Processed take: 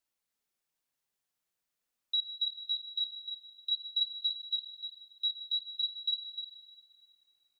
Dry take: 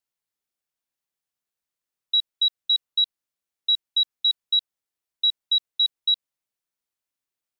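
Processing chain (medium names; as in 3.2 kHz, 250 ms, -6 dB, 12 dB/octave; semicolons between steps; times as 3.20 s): 3.74–4.56 s: band-stop 3.7 kHz, Q 7.5; in parallel at +1 dB: compression, threshold -27 dBFS, peak gain reduction 9 dB; on the sum: peak limiter -21 dBFS, peak gain reduction 10.5 dB; flange 0.46 Hz, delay 3 ms, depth 4.7 ms, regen -41%; on a send: delay 303 ms -10 dB; on the sum: plate-style reverb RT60 2.6 s, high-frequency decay 0.95×, DRR 9.5 dB; trim -1.5 dB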